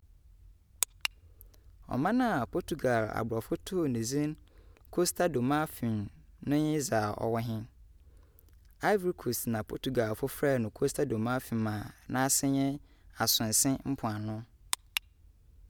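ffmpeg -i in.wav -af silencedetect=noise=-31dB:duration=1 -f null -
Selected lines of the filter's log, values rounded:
silence_start: 7.59
silence_end: 8.83 | silence_duration: 1.24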